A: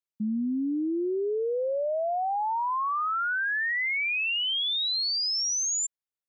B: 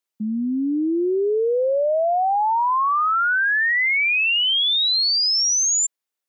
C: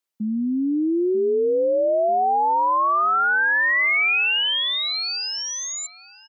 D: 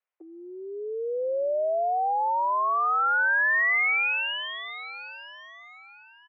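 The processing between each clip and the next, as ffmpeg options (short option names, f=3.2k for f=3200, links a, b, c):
-af "highpass=260,volume=8.5dB"
-filter_complex "[0:a]acrossover=split=3000[a][b];[b]alimiter=level_in=3.5dB:limit=-24dB:level=0:latency=1:release=210,volume=-3.5dB[c];[a][c]amix=inputs=2:normalize=0,asplit=2[d][e];[e]adelay=940,lowpass=f=1.8k:p=1,volume=-14dB,asplit=2[f][g];[g]adelay=940,lowpass=f=1.8k:p=1,volume=0.38,asplit=2[h][i];[i]adelay=940,lowpass=f=1.8k:p=1,volume=0.38,asplit=2[j][k];[k]adelay=940,lowpass=f=1.8k:p=1,volume=0.38[l];[d][f][h][j][l]amix=inputs=5:normalize=0"
-filter_complex "[0:a]acrossover=split=600|1500[a][b][c];[a]acompressor=threshold=-31dB:ratio=4[d];[b]acompressor=threshold=-30dB:ratio=4[e];[c]acompressor=threshold=-25dB:ratio=4[f];[d][e][f]amix=inputs=3:normalize=0,highpass=f=340:t=q:w=0.5412,highpass=f=340:t=q:w=1.307,lowpass=f=2.5k:t=q:w=0.5176,lowpass=f=2.5k:t=q:w=0.7071,lowpass=f=2.5k:t=q:w=1.932,afreqshift=110"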